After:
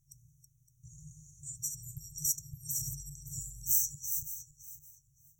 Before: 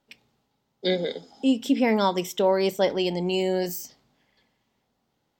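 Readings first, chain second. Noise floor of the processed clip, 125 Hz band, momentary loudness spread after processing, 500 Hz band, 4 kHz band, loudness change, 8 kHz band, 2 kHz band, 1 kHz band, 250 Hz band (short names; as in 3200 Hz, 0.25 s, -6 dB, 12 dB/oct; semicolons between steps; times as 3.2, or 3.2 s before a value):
-70 dBFS, -9.5 dB, 23 LU, under -40 dB, -16.5 dB, -9.0 dB, +9.0 dB, under -40 dB, under -40 dB, under -30 dB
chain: regenerating reverse delay 0.282 s, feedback 43%, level -7 dB; FFT band-reject 160–5600 Hz; low shelf 370 Hz +4 dB; gain +8 dB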